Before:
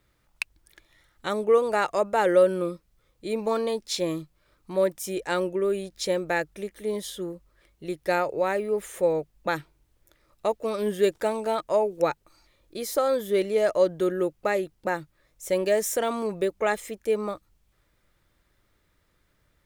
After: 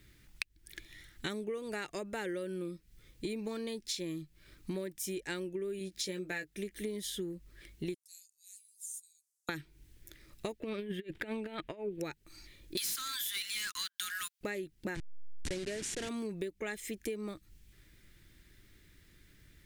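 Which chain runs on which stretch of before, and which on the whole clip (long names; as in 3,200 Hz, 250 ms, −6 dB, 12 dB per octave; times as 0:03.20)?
0:05.79–0:06.57: high-pass filter 110 Hz 6 dB per octave + double-tracking delay 16 ms −6 dB
0:07.94–0:09.49: inverse Chebyshev high-pass filter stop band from 1,300 Hz, stop band 80 dB + high-frequency loss of the air 52 metres
0:10.60–0:12.00: high shelf with overshoot 4,200 Hz −13 dB, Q 1.5 + compressor whose output falls as the input rises −29 dBFS, ratio −0.5
0:12.77–0:14.41: Chebyshev high-pass with heavy ripple 1,000 Hz, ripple 6 dB + high-shelf EQ 5,200 Hz +10.5 dB + leveller curve on the samples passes 5
0:14.95–0:16.09: hold until the input has moved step −26.5 dBFS + low-pass filter 9,300 Hz 24 dB per octave
whole clip: flat-topped bell 800 Hz −13 dB; downward compressor 16 to 1, threshold −43 dBFS; level +8 dB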